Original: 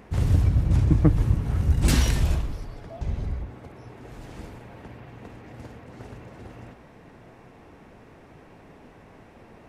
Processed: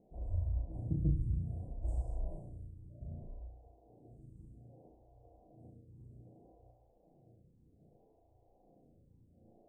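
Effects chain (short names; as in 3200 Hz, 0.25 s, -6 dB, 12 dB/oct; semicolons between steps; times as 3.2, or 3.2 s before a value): Chebyshev band-stop 770–9300 Hz, order 4; bell 340 Hz -8.5 dB 1.4 oct; resonator 330 Hz, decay 0.34 s, harmonics odd, mix 80%; formant shift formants -2 st; air absorption 120 m; flutter echo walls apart 5.9 m, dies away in 0.62 s; photocell phaser 0.63 Hz; gain +2.5 dB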